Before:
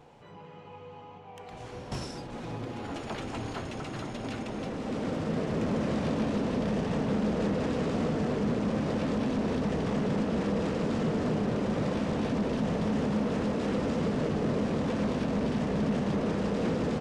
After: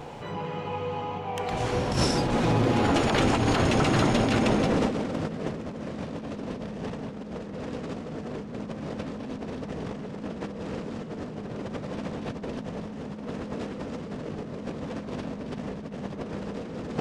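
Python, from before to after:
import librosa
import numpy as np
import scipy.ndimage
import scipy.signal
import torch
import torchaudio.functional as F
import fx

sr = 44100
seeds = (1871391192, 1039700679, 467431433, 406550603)

y = fx.over_compress(x, sr, threshold_db=-36.0, ratio=-0.5)
y = F.gain(torch.from_numpy(y), 8.0).numpy()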